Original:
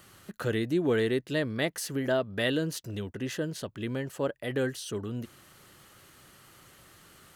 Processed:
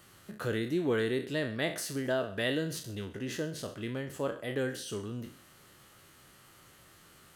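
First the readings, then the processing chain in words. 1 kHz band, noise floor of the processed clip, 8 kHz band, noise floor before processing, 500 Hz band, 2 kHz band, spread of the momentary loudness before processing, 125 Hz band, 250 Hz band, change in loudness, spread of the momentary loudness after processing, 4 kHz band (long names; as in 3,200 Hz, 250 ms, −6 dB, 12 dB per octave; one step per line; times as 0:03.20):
−2.0 dB, −59 dBFS, −2.0 dB, −57 dBFS, −3.0 dB, −2.0 dB, 9 LU, −3.5 dB, −3.5 dB, −3.0 dB, 9 LU, −2.0 dB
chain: peak hold with a decay on every bin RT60 0.40 s
on a send: feedback echo with a high-pass in the loop 130 ms, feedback 40%, level −20 dB
on the sum: level −4 dB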